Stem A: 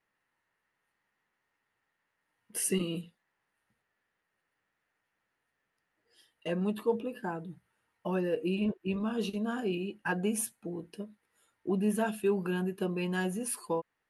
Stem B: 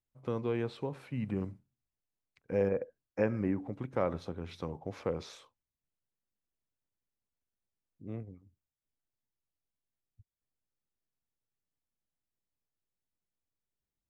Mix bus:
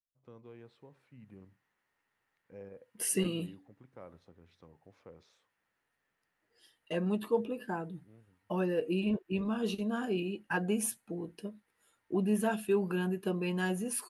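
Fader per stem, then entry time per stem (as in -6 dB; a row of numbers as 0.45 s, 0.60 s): -0.5 dB, -19.0 dB; 0.45 s, 0.00 s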